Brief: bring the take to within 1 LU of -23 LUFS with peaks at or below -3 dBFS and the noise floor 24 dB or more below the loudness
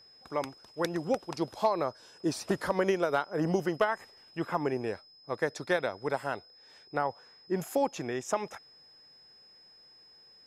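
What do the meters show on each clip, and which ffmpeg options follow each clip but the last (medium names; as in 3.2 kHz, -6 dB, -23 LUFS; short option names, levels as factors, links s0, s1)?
steady tone 5.1 kHz; tone level -55 dBFS; loudness -32.5 LUFS; peak level -15.5 dBFS; loudness target -23.0 LUFS
-> -af "bandreject=f=5100:w=30"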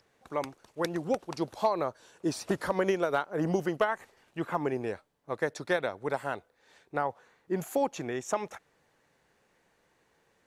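steady tone not found; loudness -32.5 LUFS; peak level -15.5 dBFS; loudness target -23.0 LUFS
-> -af "volume=2.99"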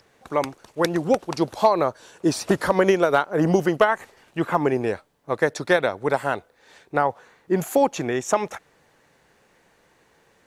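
loudness -23.0 LUFS; peak level -6.0 dBFS; noise floor -61 dBFS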